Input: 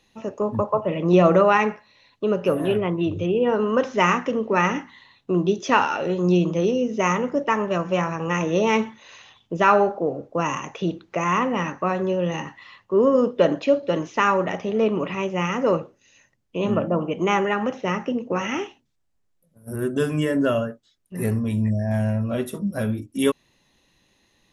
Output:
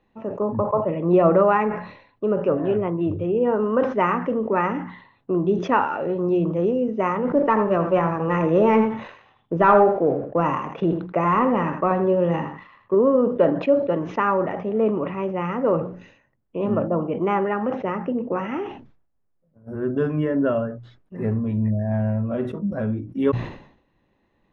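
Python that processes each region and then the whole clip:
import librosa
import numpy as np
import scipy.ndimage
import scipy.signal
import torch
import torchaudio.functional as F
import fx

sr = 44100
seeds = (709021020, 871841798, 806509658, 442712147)

y = fx.chain(x, sr, fx.leveller(passes=1),
    fx.echo_single(ms=82, db=-11.0), at=(7.25, 12.95))
y = scipy.signal.sosfilt(scipy.signal.butter(2, 1400.0, 'lowpass', fs=sr, output='sos'), y)
y = fx.hum_notches(y, sr, base_hz=60, count=3)
y = fx.sustainer(y, sr, db_per_s=92.0)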